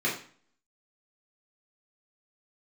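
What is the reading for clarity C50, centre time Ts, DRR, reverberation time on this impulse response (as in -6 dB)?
6.5 dB, 32 ms, -6.5 dB, 0.45 s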